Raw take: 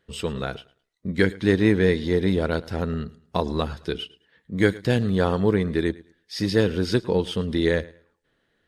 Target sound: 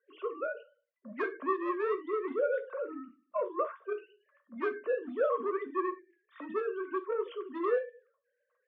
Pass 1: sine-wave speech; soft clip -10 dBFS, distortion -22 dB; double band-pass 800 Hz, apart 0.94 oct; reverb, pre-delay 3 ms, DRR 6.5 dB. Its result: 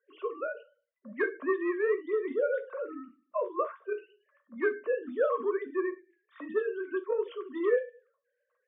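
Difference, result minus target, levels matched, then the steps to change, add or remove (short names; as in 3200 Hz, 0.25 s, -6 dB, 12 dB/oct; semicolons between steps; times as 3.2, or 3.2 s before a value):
soft clip: distortion -12 dB
change: soft clip -19.5 dBFS, distortion -10 dB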